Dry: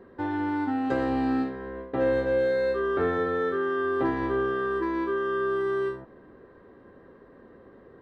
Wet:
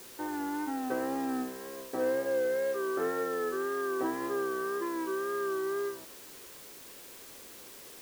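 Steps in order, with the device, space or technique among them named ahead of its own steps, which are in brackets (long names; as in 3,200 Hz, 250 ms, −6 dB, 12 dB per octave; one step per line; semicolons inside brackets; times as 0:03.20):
wax cylinder (band-pass filter 260–2,100 Hz; tape wow and flutter; white noise bed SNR 16 dB)
level −5 dB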